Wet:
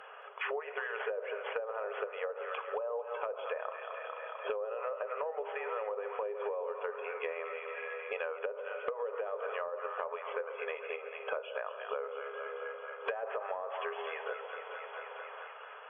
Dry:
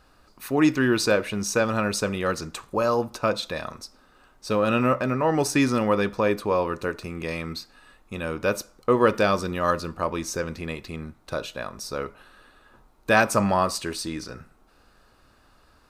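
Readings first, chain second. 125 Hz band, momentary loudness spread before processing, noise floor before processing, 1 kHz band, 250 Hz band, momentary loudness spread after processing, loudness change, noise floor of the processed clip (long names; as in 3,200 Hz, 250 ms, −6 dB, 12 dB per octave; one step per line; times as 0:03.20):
below −40 dB, 14 LU, −59 dBFS, −12.0 dB, below −35 dB, 5 LU, −14.0 dB, −48 dBFS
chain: stylus tracing distortion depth 0.072 ms
noise reduction from a noise print of the clip's start 19 dB
spring reverb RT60 2 s, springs 41/47 ms, chirp 35 ms, DRR 16.5 dB
brickwall limiter −15.5 dBFS, peak gain reduction 11 dB
downward compressor 2 to 1, threshold −37 dBFS, peak gain reduction 9.5 dB
brick-wall band-pass 400–3,400 Hz
echo with a time of its own for lows and highs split 630 Hz, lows 135 ms, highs 223 ms, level −10 dB
treble cut that deepens with the level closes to 690 Hz, closed at −30.5 dBFS
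multiband upward and downward compressor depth 100%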